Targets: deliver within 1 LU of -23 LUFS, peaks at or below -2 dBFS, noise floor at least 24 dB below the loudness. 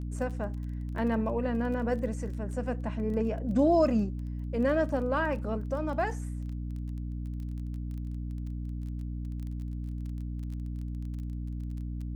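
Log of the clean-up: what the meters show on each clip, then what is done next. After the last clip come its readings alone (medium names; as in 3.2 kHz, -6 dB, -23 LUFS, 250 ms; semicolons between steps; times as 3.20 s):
tick rate 20 per s; hum 60 Hz; highest harmonic 300 Hz; hum level -33 dBFS; loudness -32.0 LUFS; peak level -13.5 dBFS; loudness target -23.0 LUFS
-> de-click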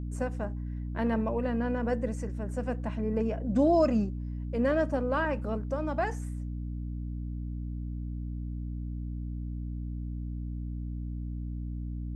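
tick rate 0 per s; hum 60 Hz; highest harmonic 300 Hz; hum level -33 dBFS
-> de-hum 60 Hz, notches 5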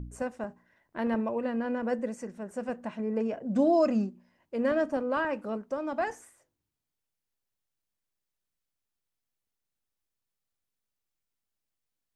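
hum not found; loudness -30.5 LUFS; peak level -14.5 dBFS; loudness target -23.0 LUFS
-> trim +7.5 dB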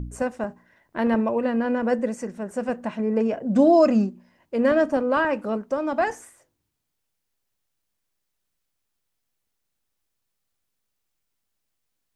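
loudness -23.0 LUFS; peak level -7.0 dBFS; noise floor -78 dBFS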